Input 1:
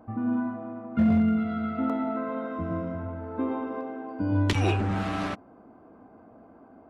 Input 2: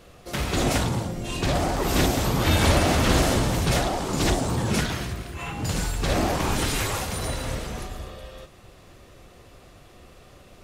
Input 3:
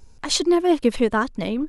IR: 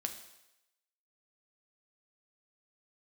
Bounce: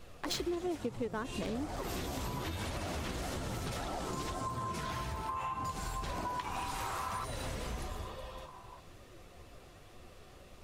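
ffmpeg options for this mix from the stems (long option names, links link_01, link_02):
-filter_complex "[0:a]highpass=frequency=1000:width_type=q:width=10,adelay=1900,volume=-1dB,afade=type=in:start_time=4.15:duration=0.57:silence=0.237137[link_01];[1:a]acompressor=threshold=-24dB:ratio=6,flanger=delay=7.3:depth=9.8:regen=56:speed=1.1:shape=triangular,volume=3dB[link_02];[2:a]equalizer=frequency=440:width=1.5:gain=4,adynamicsmooth=sensitivity=4:basefreq=1000,volume=-9dB[link_03];[link_01][link_02]amix=inputs=2:normalize=0,flanger=delay=0.7:depth=2.3:regen=76:speed=1.8:shape=triangular,acompressor=threshold=-33dB:ratio=6,volume=0dB[link_04];[link_03][link_04]amix=inputs=2:normalize=0,acompressor=threshold=-33dB:ratio=8"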